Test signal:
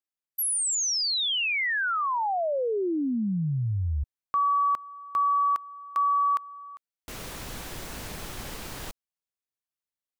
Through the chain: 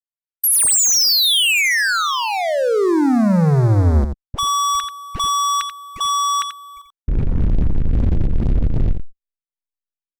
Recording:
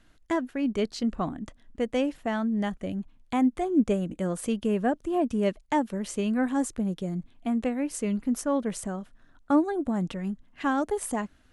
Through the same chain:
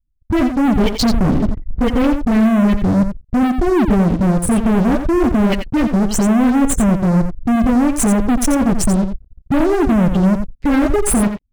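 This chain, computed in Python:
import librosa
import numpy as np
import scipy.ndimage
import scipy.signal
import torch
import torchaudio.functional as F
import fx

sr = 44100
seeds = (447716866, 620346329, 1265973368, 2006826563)

p1 = fx.wiener(x, sr, points=9)
p2 = fx.rider(p1, sr, range_db=5, speed_s=2.0)
p3 = p1 + (p2 * librosa.db_to_amplitude(1.5))
p4 = fx.peak_eq(p3, sr, hz=3300.0, db=3.5, octaves=2.6)
p5 = fx.dispersion(p4, sr, late='highs', ms=52.0, hz=390.0)
p6 = fx.leveller(p5, sr, passes=3)
p7 = fx.tone_stack(p6, sr, knobs='10-0-1')
p8 = fx.spec_gate(p7, sr, threshold_db=-25, keep='strong')
p9 = fx.leveller(p8, sr, passes=5)
p10 = p9 + fx.echo_single(p9, sr, ms=87, db=-8.5, dry=0)
y = p10 * librosa.db_to_amplitude(6.5)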